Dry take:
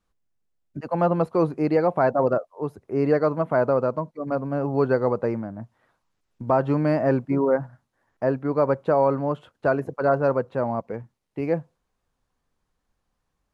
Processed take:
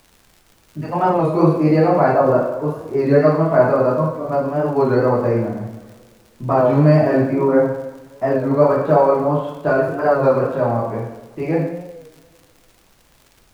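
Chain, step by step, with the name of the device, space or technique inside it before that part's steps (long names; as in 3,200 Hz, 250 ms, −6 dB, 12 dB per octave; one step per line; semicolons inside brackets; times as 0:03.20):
coupled-rooms reverb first 0.79 s, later 2.1 s, DRR −7 dB
warped LP (wow of a warped record 33 1/3 rpm, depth 100 cents; surface crackle 77 per second −35 dBFS; pink noise bed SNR 38 dB)
level −1 dB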